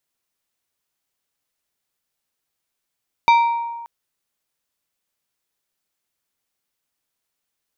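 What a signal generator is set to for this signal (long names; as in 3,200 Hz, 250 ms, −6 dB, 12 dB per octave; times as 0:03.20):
struck glass plate, length 0.58 s, lowest mode 934 Hz, decay 1.42 s, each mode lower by 8 dB, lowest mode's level −8.5 dB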